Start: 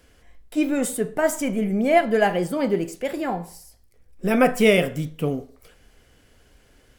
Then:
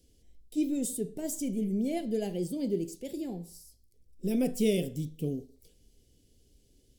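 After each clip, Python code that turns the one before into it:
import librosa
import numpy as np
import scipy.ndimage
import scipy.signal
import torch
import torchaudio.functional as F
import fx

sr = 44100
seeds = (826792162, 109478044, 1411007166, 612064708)

y = fx.curve_eq(x, sr, hz=(380.0, 1300.0, 3600.0, 5400.0), db=(0, -30, -2, 1))
y = F.gain(torch.from_numpy(y), -7.0).numpy()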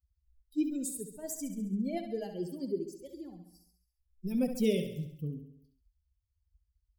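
y = fx.bin_expand(x, sr, power=2.0)
y = fx.echo_feedback(y, sr, ms=68, feedback_pct=55, wet_db=-9)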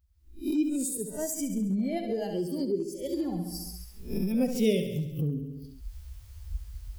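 y = fx.spec_swells(x, sr, rise_s=0.31)
y = fx.recorder_agc(y, sr, target_db=-26.0, rise_db_per_s=40.0, max_gain_db=30)
y = F.gain(torch.from_numpy(y), 3.0).numpy()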